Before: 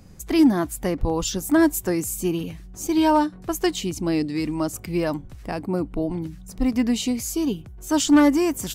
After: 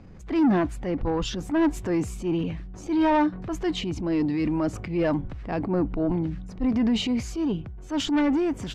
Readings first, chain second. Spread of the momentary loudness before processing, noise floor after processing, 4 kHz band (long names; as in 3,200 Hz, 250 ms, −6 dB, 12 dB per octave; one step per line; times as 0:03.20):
11 LU, −41 dBFS, −3.0 dB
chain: low-pass filter 2,700 Hz 12 dB per octave
transient designer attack −8 dB, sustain +5 dB
soft clipping −17.5 dBFS, distortion −12 dB
speech leveller 2 s